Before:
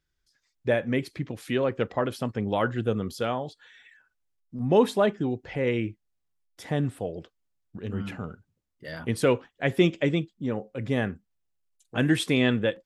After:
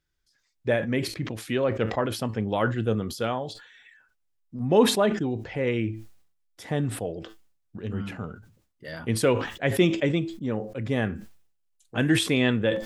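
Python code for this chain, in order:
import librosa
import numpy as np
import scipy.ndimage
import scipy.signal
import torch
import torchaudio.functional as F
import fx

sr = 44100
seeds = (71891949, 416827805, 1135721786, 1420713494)

y = fx.comb_fb(x, sr, f0_hz=110.0, decay_s=0.19, harmonics='all', damping=0.0, mix_pct=40)
y = fx.sustainer(y, sr, db_per_s=92.0)
y = F.gain(torch.from_numpy(y), 3.0).numpy()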